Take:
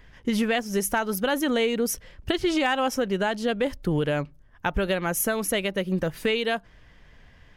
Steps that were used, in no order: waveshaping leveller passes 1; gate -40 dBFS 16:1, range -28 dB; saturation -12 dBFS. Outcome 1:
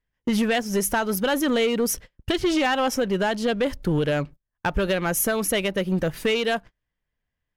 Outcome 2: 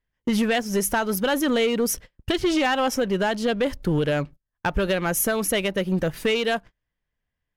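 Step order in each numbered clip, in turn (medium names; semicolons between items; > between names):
saturation > gate > waveshaping leveller; gate > waveshaping leveller > saturation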